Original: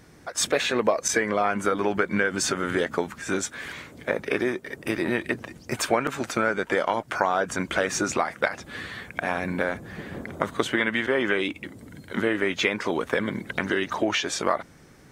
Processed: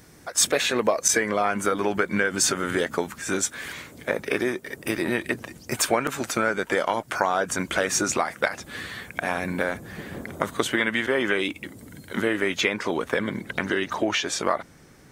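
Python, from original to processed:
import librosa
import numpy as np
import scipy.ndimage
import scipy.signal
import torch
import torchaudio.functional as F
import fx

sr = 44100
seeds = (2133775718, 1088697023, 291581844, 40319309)

y = fx.high_shelf(x, sr, hz=6700.0, db=fx.steps((0.0, 11.0), (12.6, 3.5)))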